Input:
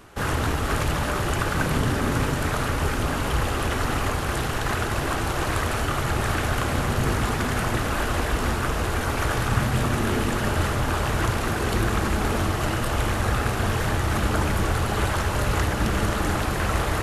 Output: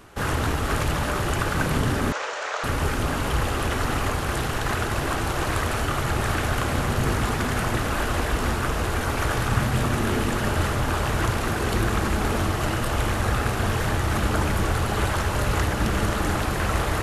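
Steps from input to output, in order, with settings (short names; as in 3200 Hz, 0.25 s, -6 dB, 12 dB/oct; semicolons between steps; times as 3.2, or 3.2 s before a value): 2.12–2.64 elliptic band-pass 510–6700 Hz, stop band 40 dB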